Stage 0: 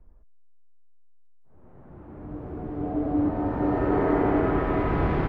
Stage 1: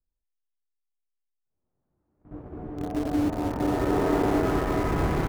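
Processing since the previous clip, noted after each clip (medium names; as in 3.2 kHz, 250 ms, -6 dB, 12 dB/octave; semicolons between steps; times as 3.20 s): gate -36 dBFS, range -28 dB; in parallel at -12 dB: bit crusher 4-bit; on the sum: trim -3 dB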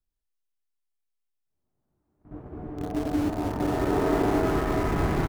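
band-stop 510 Hz, Q 12; doubling 39 ms -12 dB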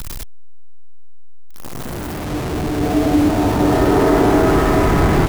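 jump at every zero crossing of -30 dBFS; in parallel at -2 dB: peak limiter -19 dBFS, peak gain reduction 7.5 dB; on the sum: trim +5.5 dB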